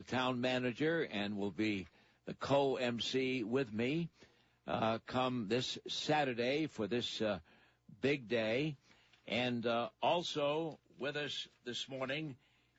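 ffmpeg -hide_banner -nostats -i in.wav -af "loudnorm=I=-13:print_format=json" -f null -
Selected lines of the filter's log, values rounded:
"input_i" : "-37.4",
"input_tp" : "-21.6",
"input_lra" : "2.3",
"input_thresh" : "-47.9",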